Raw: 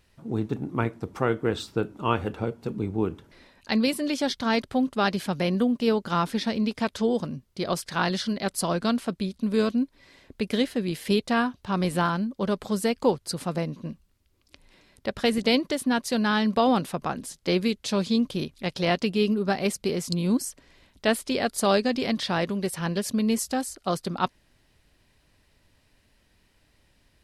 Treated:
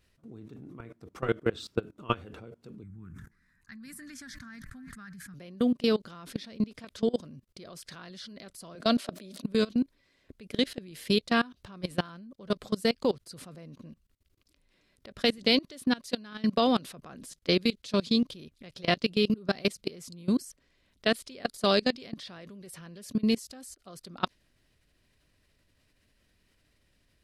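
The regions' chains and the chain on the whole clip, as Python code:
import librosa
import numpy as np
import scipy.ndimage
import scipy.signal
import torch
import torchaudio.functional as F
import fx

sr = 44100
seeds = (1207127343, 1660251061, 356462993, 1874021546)

y = fx.chain(x, sr, fx.curve_eq(hz=(180.0, 520.0, 1700.0, 2900.0, 4400.0, 6900.0), db=(0, -30, 2, -20, -14, -4)),
    fx.echo_banded(ms=308, feedback_pct=63, hz=1600.0, wet_db=-19.5),
    fx.sustainer(db_per_s=68.0), at=(2.83, 5.34))
y = fx.chain(y, sr, fx.highpass(hz=210.0, slope=24),
    fx.peak_eq(hz=620.0, db=10.5, octaves=0.32),
    fx.sustainer(db_per_s=26.0), at=(8.75, 9.44))
y = fx.peak_eq(y, sr, hz=860.0, db=-8.5, octaves=0.31)
y = fx.level_steps(y, sr, step_db=23)
y = fx.dynamic_eq(y, sr, hz=4100.0, q=1.2, threshold_db=-49.0, ratio=4.0, max_db=6)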